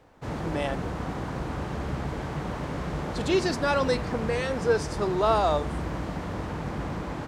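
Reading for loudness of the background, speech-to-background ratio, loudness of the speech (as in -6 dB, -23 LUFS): -33.0 LUFS, 6.0 dB, -27.0 LUFS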